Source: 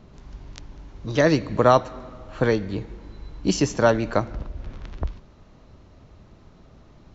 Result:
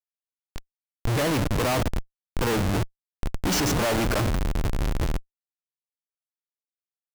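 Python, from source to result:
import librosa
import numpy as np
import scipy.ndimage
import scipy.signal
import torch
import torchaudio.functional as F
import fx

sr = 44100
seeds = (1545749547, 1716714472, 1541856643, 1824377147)

y = fx.rider(x, sr, range_db=4, speed_s=2.0)
y = fx.noise_reduce_blind(y, sr, reduce_db=7)
y = fx.schmitt(y, sr, flips_db=-33.0)
y = F.gain(torch.from_numpy(y), 3.5).numpy()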